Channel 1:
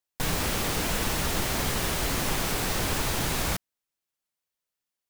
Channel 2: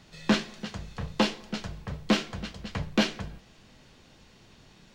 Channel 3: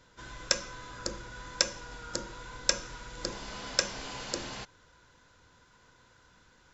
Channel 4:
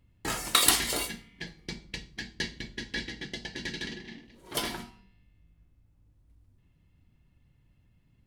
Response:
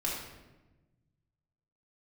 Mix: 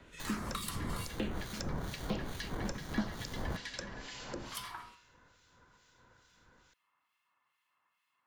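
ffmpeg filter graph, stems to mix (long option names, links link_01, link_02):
-filter_complex "[0:a]acrusher=samples=17:mix=1:aa=0.000001,volume=-5.5dB[link_01];[1:a]asplit=2[link_02][link_03];[link_03]afreqshift=-0.82[link_04];[link_02][link_04]amix=inputs=2:normalize=1,volume=2.5dB[link_05];[2:a]volume=-0.5dB[link_06];[3:a]highpass=frequency=1100:width_type=q:width=5.8,volume=0.5dB[link_07];[link_01][link_05][link_06][link_07]amix=inputs=4:normalize=0,acrossover=split=330|1800[link_08][link_09][link_10];[link_08]acompressor=threshold=-32dB:ratio=4[link_11];[link_09]acompressor=threshold=-43dB:ratio=4[link_12];[link_10]acompressor=threshold=-43dB:ratio=4[link_13];[link_11][link_12][link_13]amix=inputs=3:normalize=0,acrossover=split=2000[link_14][link_15];[link_14]aeval=exprs='val(0)*(1-0.7/2+0.7/2*cos(2*PI*2.3*n/s))':channel_layout=same[link_16];[link_15]aeval=exprs='val(0)*(1-0.7/2-0.7/2*cos(2*PI*2.3*n/s))':channel_layout=same[link_17];[link_16][link_17]amix=inputs=2:normalize=0"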